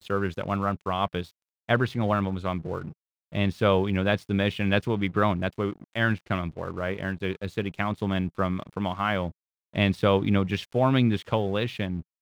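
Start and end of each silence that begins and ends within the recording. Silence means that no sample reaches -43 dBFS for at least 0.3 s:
1.31–1.69 s
2.93–3.32 s
9.31–9.74 s

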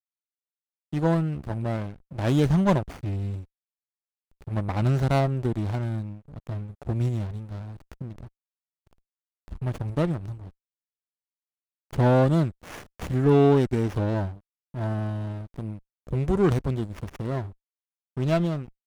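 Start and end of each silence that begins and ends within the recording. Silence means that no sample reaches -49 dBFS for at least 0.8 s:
3.45–4.41 s
10.50–11.91 s

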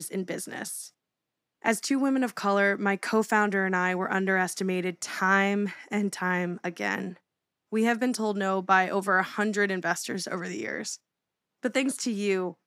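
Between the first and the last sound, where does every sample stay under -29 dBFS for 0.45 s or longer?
0.81–1.64 s
7.08–7.73 s
10.94–11.65 s

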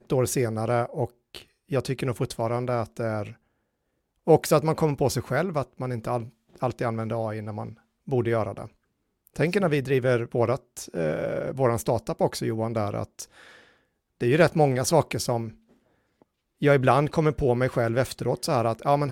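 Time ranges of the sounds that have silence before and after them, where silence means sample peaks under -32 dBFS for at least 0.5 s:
4.27–8.65 s
9.27–13.24 s
14.21–15.49 s

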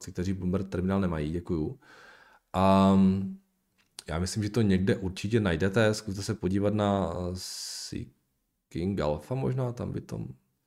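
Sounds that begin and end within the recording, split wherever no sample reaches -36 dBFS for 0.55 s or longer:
2.54–3.33 s
3.99–8.03 s

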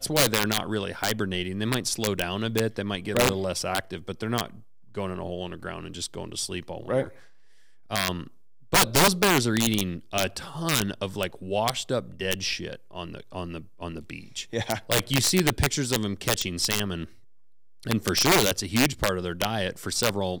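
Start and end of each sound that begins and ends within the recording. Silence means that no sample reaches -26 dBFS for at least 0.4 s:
4.97–7.04 s
7.91–8.21 s
8.73–17.04 s

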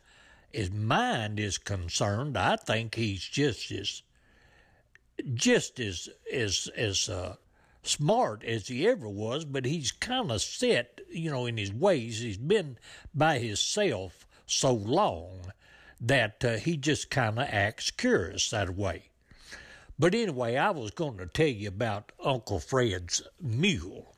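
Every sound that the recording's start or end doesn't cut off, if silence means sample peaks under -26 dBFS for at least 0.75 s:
5.19–15.14 s
16.07–18.91 s

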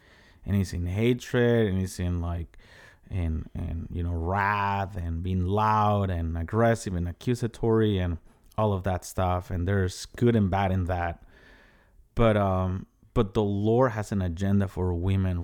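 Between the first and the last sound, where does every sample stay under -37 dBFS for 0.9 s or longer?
11.14–12.17 s

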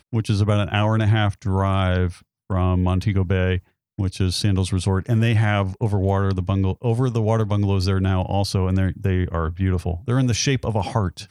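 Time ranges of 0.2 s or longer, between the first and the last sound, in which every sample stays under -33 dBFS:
2.12–2.50 s
3.59–3.98 s

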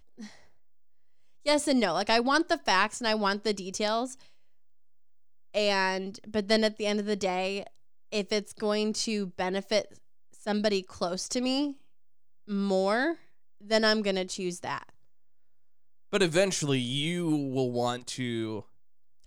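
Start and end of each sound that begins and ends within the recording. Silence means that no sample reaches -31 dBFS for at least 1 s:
1.47–4.06 s
5.55–14.78 s

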